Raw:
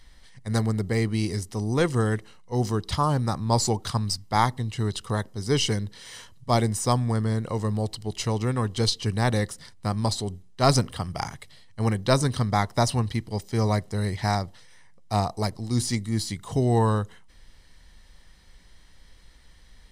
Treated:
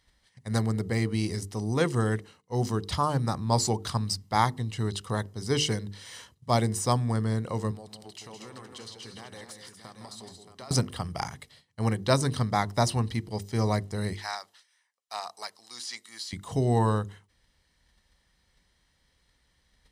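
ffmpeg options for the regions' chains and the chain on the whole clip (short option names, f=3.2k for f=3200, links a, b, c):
-filter_complex "[0:a]asettb=1/sr,asplit=3[a][b][c];[a]atrim=end=7.714[d];[b]atrim=start=7.71:end=10.71,asetpts=PTS-STARTPTS,afade=t=in:d=0.004:c=qsin,afade=t=out:st=2.996:d=0.004:c=qsin,highpass=f=500:p=1,acompressor=threshold=-38dB:ratio=12:attack=3.2:release=140:knee=1:detection=peak,aecho=1:1:161|236|625:0.422|0.335|0.335,atrim=end_sample=132300[e];[c]atrim=start=10.706[f];[d][e]acrossfade=d=0.004:c1=hsin:c2=qsin[g];[g][f]acrossfade=d=0.004:c1=qsin:c2=hsin,asettb=1/sr,asplit=3[h][i][j];[h]atrim=end=14.134[k];[i]atrim=start=14.13:end=16.33,asetpts=PTS-STARTPTS,afade=t=in:d=0.004:c=qsin,afade=t=out:st=2.196:d=0.004:c=qsin,highpass=1.2k,acrossover=split=5800[l][m];[m]acompressor=threshold=-45dB:ratio=4:attack=1:release=60[n];[l][n]amix=inputs=2:normalize=0,equalizer=f=2.1k:t=o:w=0.3:g=-3[o];[j]atrim=start=16.326[p];[k][o]acrossfade=d=0.004:c1=hsin:c2=qsin[q];[q][p]acrossfade=d=0.004:c1=qsin:c2=hsin,highpass=48,agate=range=-9dB:threshold=-53dB:ratio=16:detection=peak,bandreject=f=50:t=h:w=6,bandreject=f=100:t=h:w=6,bandreject=f=150:t=h:w=6,bandreject=f=200:t=h:w=6,bandreject=f=250:t=h:w=6,bandreject=f=300:t=h:w=6,bandreject=f=350:t=h:w=6,bandreject=f=400:t=h:w=6,bandreject=f=450:t=h:w=6,volume=-2dB"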